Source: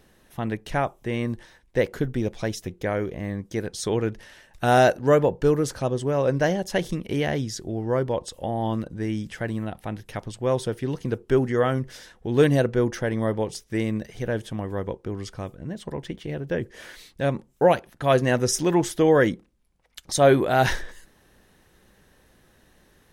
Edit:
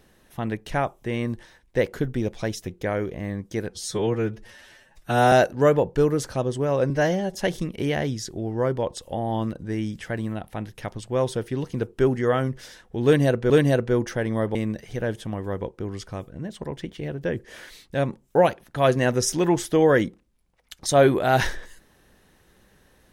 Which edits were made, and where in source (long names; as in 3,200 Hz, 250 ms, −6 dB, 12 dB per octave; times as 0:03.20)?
0:03.70–0:04.78: time-stretch 1.5×
0:06.36–0:06.66: time-stretch 1.5×
0:12.36–0:12.81: repeat, 2 plays
0:13.41–0:13.81: remove